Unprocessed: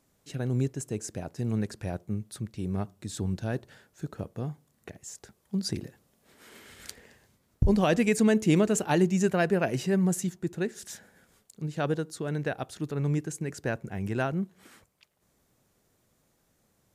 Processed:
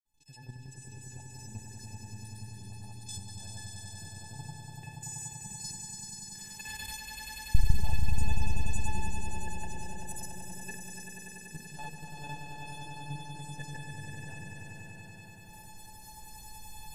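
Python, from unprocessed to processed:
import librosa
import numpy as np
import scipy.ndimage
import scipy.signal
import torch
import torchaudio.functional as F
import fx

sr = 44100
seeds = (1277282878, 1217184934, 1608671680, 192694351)

y = fx.recorder_agc(x, sr, target_db=-16.5, rise_db_per_s=21.0, max_gain_db=30)
y = fx.peak_eq(y, sr, hz=1400.0, db=-9.0, octaves=0.93)
y = fx.hum_notches(y, sr, base_hz=60, count=2)
y = fx.comb_fb(y, sr, f0_hz=860.0, decay_s=0.34, harmonics='all', damping=0.0, mix_pct=100)
y = y + 10.0 ** (-17.0 / 20.0) * np.pad(y, (int(111 * sr / 1000.0), 0))[:len(y)]
y = fx.granulator(y, sr, seeds[0], grain_ms=100.0, per_s=20.0, spray_ms=100.0, spread_st=0)
y = fx.level_steps(y, sr, step_db=11)
y = fx.low_shelf(y, sr, hz=160.0, db=6.0)
y = fx.echo_swell(y, sr, ms=96, loudest=5, wet_db=-6.5)
y = F.gain(torch.from_numpy(y), 13.5).numpy()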